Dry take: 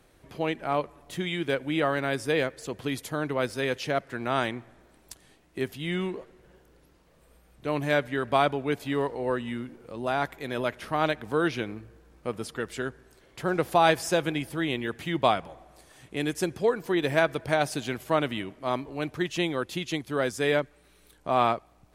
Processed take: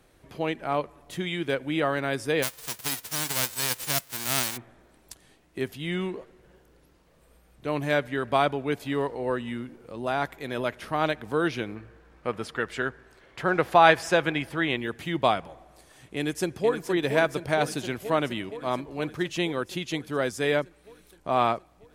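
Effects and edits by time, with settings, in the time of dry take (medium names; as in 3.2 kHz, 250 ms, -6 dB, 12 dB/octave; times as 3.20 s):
2.42–4.56 s: formants flattened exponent 0.1
11.75–14.77 s: FFT filter 300 Hz 0 dB, 1.7 kHz +7 dB, 12 kHz -7 dB
16.16–16.88 s: echo throw 470 ms, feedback 75%, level -8 dB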